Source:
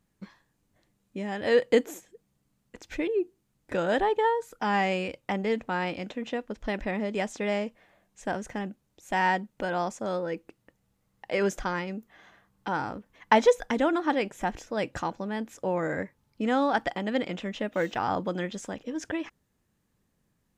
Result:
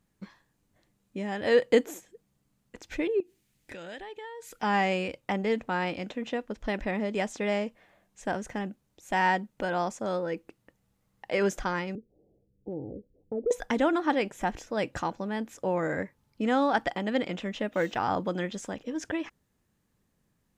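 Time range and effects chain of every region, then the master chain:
3.2–4.63 resonant high shelf 1600 Hz +7 dB, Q 1.5 + compressor 4:1, threshold -42 dBFS
11.95–13.51 steep low-pass 560 Hz 48 dB/oct + compressor 4:1, threshold -28 dBFS + comb 2.4 ms, depth 38%
whole clip: dry

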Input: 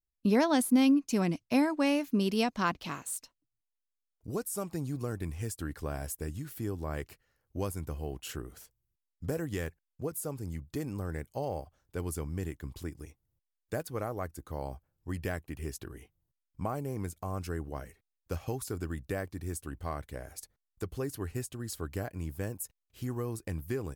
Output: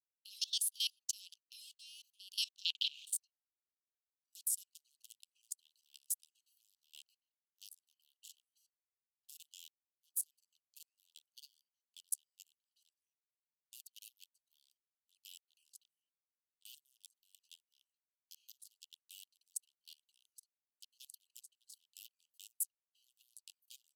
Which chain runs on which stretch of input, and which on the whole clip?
2.65–3.13 air absorption 440 m + small resonant body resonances 1000/2300 Hz, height 13 dB, ringing for 25 ms + spectral compressor 4:1
whole clip: Wiener smoothing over 25 samples; steep high-pass 2900 Hz 96 dB/oct; level quantiser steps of 21 dB; gain +8 dB

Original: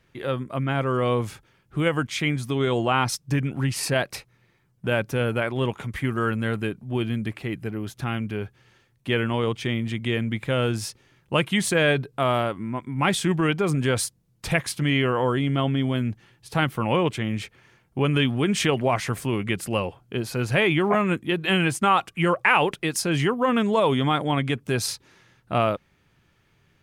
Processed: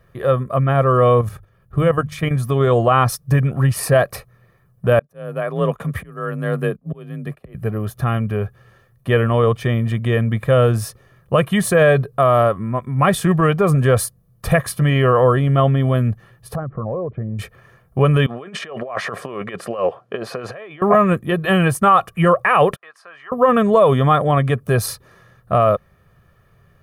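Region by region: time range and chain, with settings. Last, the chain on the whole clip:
1.21–2.31 low shelf 180 Hz +7.5 dB + notches 50/100/150 Hz + level quantiser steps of 11 dB
4.99–7.55 gate -39 dBFS, range -22 dB + auto swell 0.672 s + frequency shift +34 Hz
16.55–17.39 formant sharpening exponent 1.5 + Bessel low-pass 920 Hz, order 4 + compressor 5:1, threshold -30 dBFS
18.26–20.82 negative-ratio compressor -28 dBFS, ratio -0.5 + BPF 340–4600 Hz
22.76–23.32 ladder band-pass 1500 Hz, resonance 25% + compressor 2:1, threshold -42 dBFS
whole clip: band shelf 4100 Hz -11 dB 2.3 oct; comb 1.7 ms, depth 62%; maximiser +11 dB; gain -3 dB

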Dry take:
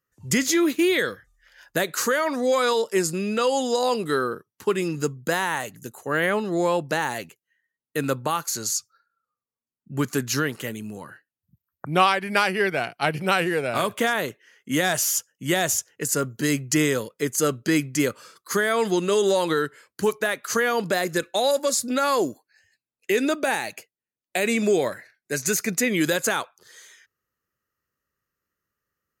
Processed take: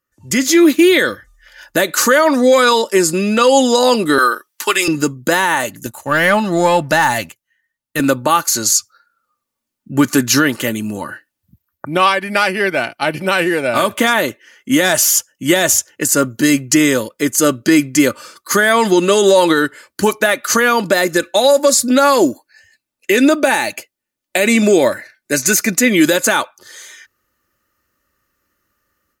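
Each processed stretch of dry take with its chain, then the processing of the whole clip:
4.18–4.88 HPF 310 Hz + tilt shelf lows -9.5 dB, about 780 Hz
5.86–8 EQ curve 130 Hz 0 dB, 410 Hz -14 dB, 670 Hz -5 dB + sample leveller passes 1
whole clip: comb 3.4 ms, depth 47%; AGC; maximiser +4 dB; gain -1 dB

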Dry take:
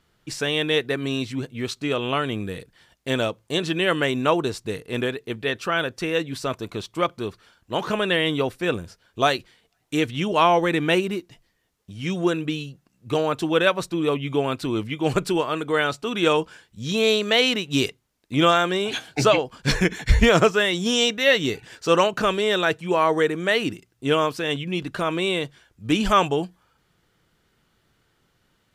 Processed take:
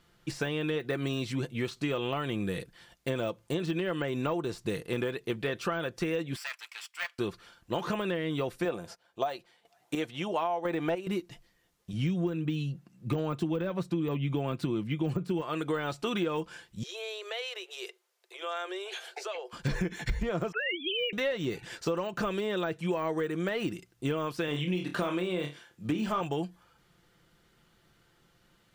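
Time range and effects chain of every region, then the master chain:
6.36–7.19 minimum comb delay 0.39 ms + HPF 1300 Hz 24 dB/oct + tilt -1.5 dB/oct
8.65–11.07 HPF 230 Hz 6 dB/oct + bell 740 Hz +9.5 dB 0.99 oct + chopper 1 Hz, depth 65%, duty 30%
11.93–15.42 HPF 160 Hz + tone controls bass +13 dB, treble -3 dB + de-esser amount 85%
16.83–19.53 compressor 4:1, threshold -36 dBFS + Chebyshev high-pass 360 Hz, order 8
20.52–21.13 sine-wave speech + HPF 1300 Hz 6 dB/oct
24.48–26.21 HPF 140 Hz + flutter echo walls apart 4.7 m, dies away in 0.23 s
whole clip: de-esser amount 95%; comb 5.8 ms, depth 34%; compressor 12:1, threshold -27 dBFS

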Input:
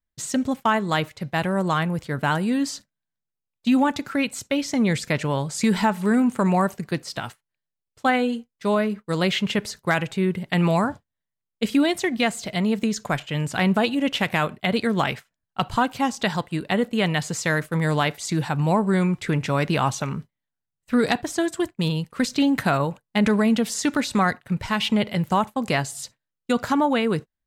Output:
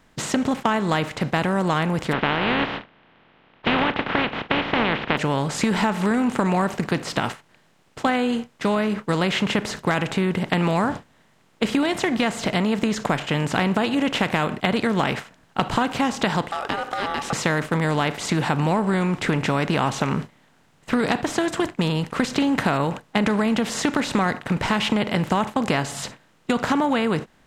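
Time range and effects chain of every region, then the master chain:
2.11–5.17 spectral contrast lowered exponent 0.3 + steep low-pass 3300 Hz 48 dB/oct
16.51–17.33 ring modulator 1000 Hz + compressor 4:1, threshold -34 dBFS
whole clip: per-bin compression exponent 0.6; high shelf 6200 Hz -8 dB; compressor 3:1, threshold -20 dBFS; gain +1.5 dB

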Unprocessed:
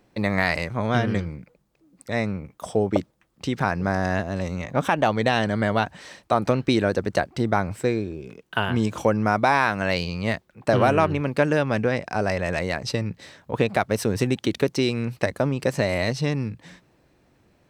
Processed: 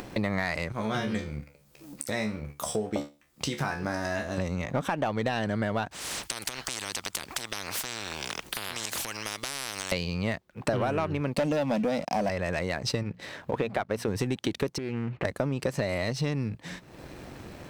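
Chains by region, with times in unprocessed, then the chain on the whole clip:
0.72–4.38 high shelf 3600 Hz +11 dB + resonator 72 Hz, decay 0.28 s, mix 90%
5.91–9.92 compressor 2:1, threshold -35 dBFS + spectral compressor 10:1
11.34–12.29 fixed phaser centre 390 Hz, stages 6 + sample leveller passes 2
13.03–14.08 tone controls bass -4 dB, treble -8 dB + notches 60/120/180/240 Hz
14.78–15.25 LPF 2500 Hz 24 dB/oct + compressor, threshold -31 dBFS + Doppler distortion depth 0.32 ms
whole clip: upward compressor, threshold -30 dBFS; sample leveller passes 1; compressor 5:1, threshold -26 dBFS

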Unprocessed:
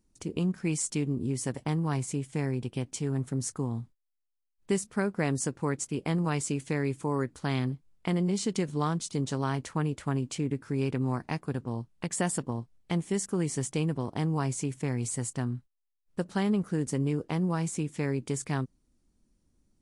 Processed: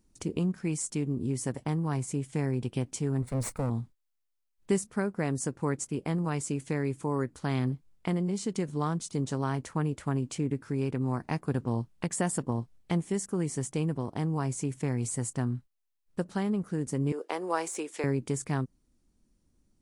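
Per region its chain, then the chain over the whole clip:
3.22–3.7 minimum comb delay 1.4 ms + ripple EQ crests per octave 0.95, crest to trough 7 dB + Doppler distortion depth 0.19 ms
17.12–18.04 de-esser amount 80% + HPF 390 Hz 24 dB/oct
whole clip: dynamic EQ 3500 Hz, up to -5 dB, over -49 dBFS, Q 0.81; vocal rider 0.5 s

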